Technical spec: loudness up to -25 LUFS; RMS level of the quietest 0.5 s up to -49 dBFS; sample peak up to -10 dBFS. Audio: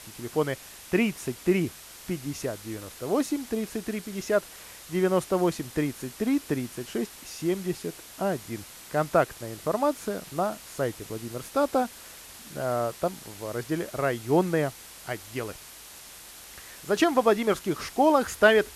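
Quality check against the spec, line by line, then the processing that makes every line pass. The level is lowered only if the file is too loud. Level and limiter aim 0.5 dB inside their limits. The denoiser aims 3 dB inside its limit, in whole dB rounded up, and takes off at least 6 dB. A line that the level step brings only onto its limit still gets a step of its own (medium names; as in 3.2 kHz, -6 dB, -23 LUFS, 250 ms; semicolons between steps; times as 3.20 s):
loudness -28.0 LUFS: pass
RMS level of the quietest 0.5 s -46 dBFS: fail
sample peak -7.0 dBFS: fail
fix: noise reduction 6 dB, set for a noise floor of -46 dBFS; peak limiter -10.5 dBFS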